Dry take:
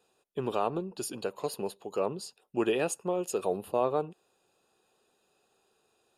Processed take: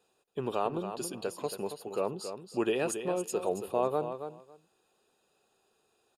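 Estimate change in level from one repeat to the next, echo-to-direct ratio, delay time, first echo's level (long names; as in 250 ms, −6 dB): −16.0 dB, −9.0 dB, 276 ms, −9.0 dB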